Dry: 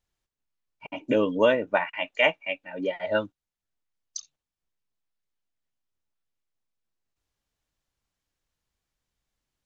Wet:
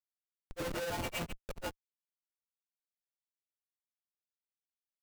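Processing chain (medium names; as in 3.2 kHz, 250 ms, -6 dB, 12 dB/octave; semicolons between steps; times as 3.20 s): inharmonic resonator 170 Hz, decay 0.68 s, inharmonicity 0.002; bucket-brigade echo 392 ms, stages 4096, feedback 70%, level -21.5 dB; Schmitt trigger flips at -44 dBFS; peak limiter -47 dBFS, peak gain reduction 4.5 dB; granular stretch 0.52×, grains 111 ms; trim +13.5 dB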